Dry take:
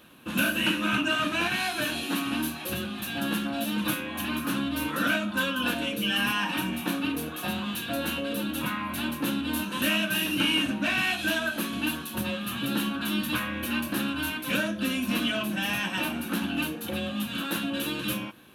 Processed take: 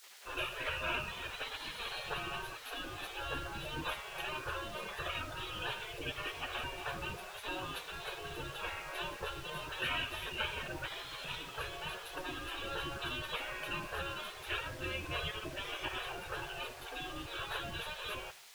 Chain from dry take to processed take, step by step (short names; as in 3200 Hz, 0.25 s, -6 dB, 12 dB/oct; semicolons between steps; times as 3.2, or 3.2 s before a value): spectral contrast raised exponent 1.6; LPF 11000 Hz 24 dB/oct; in parallel at -10 dB: requantised 6-bit, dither triangular; on the sum: RIAA curve playback; spectral gate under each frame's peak -25 dB weak; on a send at -18 dB: reverb RT60 0.45 s, pre-delay 76 ms; on the sum: gain +1.5 dB